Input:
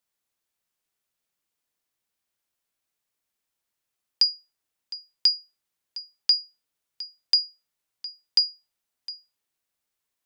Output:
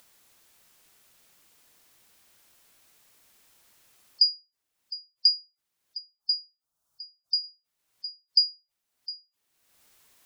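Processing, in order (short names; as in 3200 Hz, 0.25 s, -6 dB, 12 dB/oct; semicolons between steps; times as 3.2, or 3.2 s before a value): spectral gate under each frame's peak -20 dB strong; 5.98–7.44 EQ curve 130 Hz 0 dB, 460 Hz -9 dB, 670 Hz -1 dB, 1300 Hz -1 dB, 2000 Hz -18 dB, 6000 Hz -3 dB; upward compressor, threshold -43 dBFS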